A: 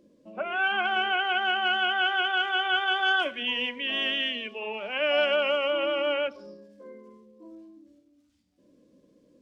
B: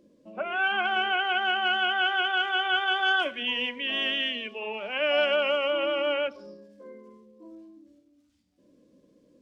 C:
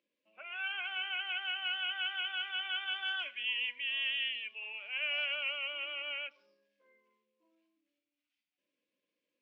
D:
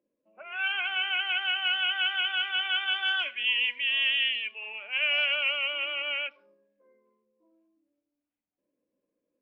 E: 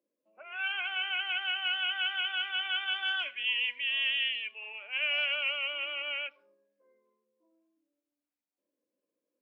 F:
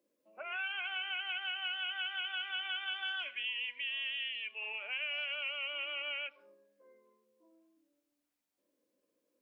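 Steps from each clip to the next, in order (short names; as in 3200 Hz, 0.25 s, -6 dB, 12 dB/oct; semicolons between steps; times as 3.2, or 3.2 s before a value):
nothing audible
band-pass 2500 Hz, Q 3; gain -3 dB
low-pass opened by the level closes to 730 Hz, open at -31 dBFS; gain +8.5 dB
HPF 250 Hz 12 dB/oct; gain -4 dB
compressor 4:1, threshold -43 dBFS, peak gain reduction 14.5 dB; gain +5.5 dB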